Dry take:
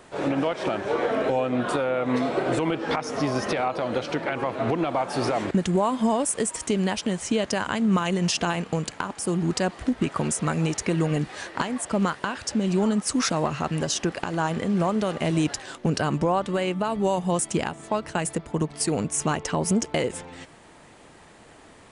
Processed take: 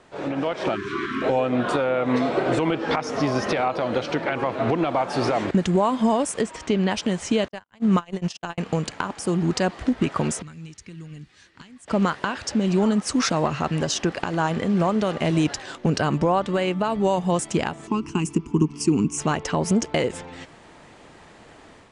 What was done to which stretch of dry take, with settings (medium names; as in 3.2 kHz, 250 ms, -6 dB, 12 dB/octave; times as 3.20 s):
0.75–1.23 s: spectral selection erased 410–990 Hz
6.41–6.91 s: low-pass 4.6 kHz
7.48–8.58 s: gate -23 dBFS, range -59 dB
10.42–11.88 s: amplifier tone stack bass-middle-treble 6-0-2
17.87–19.18 s: FFT filter 110 Hz 0 dB, 270 Hz +8 dB, 400 Hz +4 dB, 570 Hz -29 dB, 1 kHz +1 dB, 1.8 kHz -15 dB, 2.7 kHz +3 dB, 3.8 kHz -14 dB, 5.7 kHz +3 dB, 13 kHz -6 dB
whole clip: low-pass 6.8 kHz 12 dB/octave; level rider gain up to 6 dB; trim -3.5 dB